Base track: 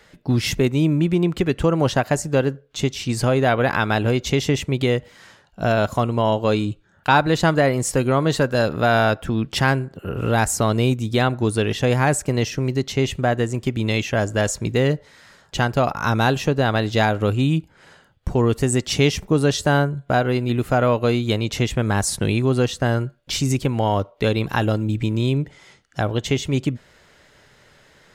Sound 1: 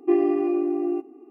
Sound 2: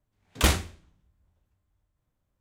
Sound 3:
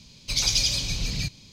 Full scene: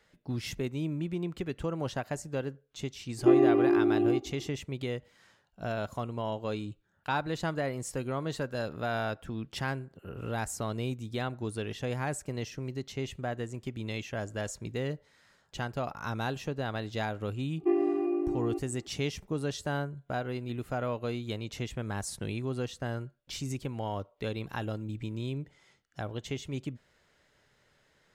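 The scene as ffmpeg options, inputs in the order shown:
ffmpeg -i bed.wav -i cue0.wav -filter_complex "[1:a]asplit=2[link_01][link_02];[0:a]volume=-15dB[link_03];[link_01]atrim=end=1.3,asetpts=PTS-STARTPTS,volume=-1dB,afade=type=in:duration=0.004:curve=hsin,afade=type=out:start_time=1.296:duration=0.004:curve=hsin,adelay=3180[link_04];[link_02]atrim=end=1.3,asetpts=PTS-STARTPTS,volume=-6.5dB,afade=type=in:duration=0.004:curve=hsin,afade=type=out:start_time=1.296:duration=0.004:curve=hsin,adelay=17580[link_05];[link_03][link_04][link_05]amix=inputs=3:normalize=0" out.wav

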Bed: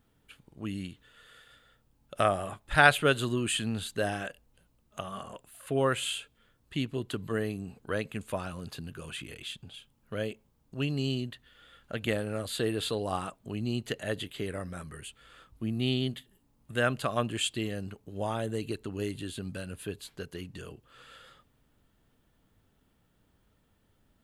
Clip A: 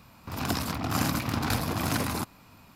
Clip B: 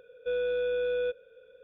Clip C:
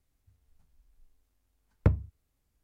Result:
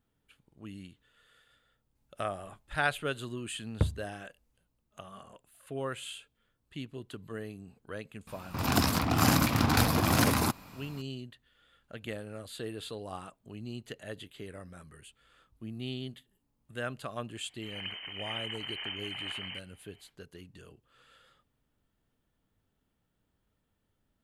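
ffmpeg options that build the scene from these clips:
ffmpeg -i bed.wav -i cue0.wav -i cue1.wav -i cue2.wav -filter_complex "[1:a]asplit=2[link_01][link_02];[0:a]volume=-9dB[link_03];[link_01]acontrast=67[link_04];[link_02]lowpass=frequency=2700:width_type=q:width=0.5098,lowpass=frequency=2700:width_type=q:width=0.6013,lowpass=frequency=2700:width_type=q:width=0.9,lowpass=frequency=2700:width_type=q:width=2.563,afreqshift=-3200[link_05];[3:a]atrim=end=2.63,asetpts=PTS-STARTPTS,volume=-4dB,afade=type=in:duration=0.004:curve=hsin,afade=type=out:start_time=2.626:duration=0.004:curve=hsin,adelay=1950[link_06];[link_04]atrim=end=2.75,asetpts=PTS-STARTPTS,volume=-3.5dB,afade=type=in:duration=0.004:curve=hsin,afade=type=out:start_time=2.746:duration=0.004:curve=hsin,adelay=8270[link_07];[link_05]atrim=end=2.75,asetpts=PTS-STARTPTS,volume=-11dB,afade=type=in:duration=0.004:curve=hsin,afade=type=out:start_time=2.746:duration=0.004:curve=hsin,adelay=17350[link_08];[link_03][link_06][link_07][link_08]amix=inputs=4:normalize=0" out.wav

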